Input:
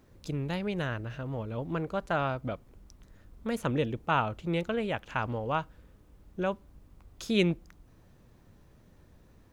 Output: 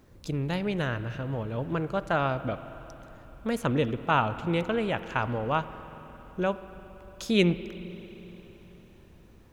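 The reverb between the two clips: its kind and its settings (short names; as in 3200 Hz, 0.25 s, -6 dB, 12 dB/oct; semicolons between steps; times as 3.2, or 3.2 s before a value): spring tank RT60 3.9 s, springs 45/57 ms, chirp 45 ms, DRR 12.5 dB; gain +3 dB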